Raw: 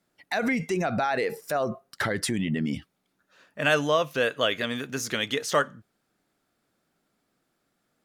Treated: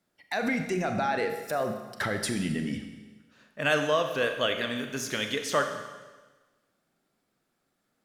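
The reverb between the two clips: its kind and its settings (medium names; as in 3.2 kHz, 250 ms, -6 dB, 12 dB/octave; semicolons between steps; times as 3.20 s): Schroeder reverb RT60 1.3 s, combs from 29 ms, DRR 6 dB; trim -3 dB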